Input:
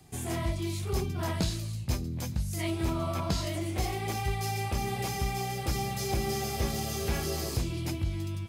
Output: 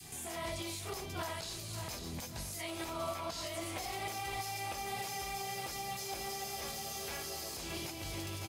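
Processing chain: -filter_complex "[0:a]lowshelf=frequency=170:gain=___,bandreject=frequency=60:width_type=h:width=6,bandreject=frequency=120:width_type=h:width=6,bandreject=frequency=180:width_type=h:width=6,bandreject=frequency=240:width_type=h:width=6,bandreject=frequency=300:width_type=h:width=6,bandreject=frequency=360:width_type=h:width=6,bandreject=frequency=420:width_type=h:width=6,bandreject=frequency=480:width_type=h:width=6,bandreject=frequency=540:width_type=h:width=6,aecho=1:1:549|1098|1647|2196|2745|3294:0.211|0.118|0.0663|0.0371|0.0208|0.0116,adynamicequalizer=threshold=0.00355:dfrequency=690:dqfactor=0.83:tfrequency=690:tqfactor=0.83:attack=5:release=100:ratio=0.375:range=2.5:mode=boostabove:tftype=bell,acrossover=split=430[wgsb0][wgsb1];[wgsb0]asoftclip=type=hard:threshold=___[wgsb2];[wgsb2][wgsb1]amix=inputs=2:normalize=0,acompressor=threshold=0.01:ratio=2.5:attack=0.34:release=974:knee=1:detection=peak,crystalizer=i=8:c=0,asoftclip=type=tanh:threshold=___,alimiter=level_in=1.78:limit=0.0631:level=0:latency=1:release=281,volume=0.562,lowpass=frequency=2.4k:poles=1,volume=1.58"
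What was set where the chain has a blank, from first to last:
-4.5, 0.015, 0.112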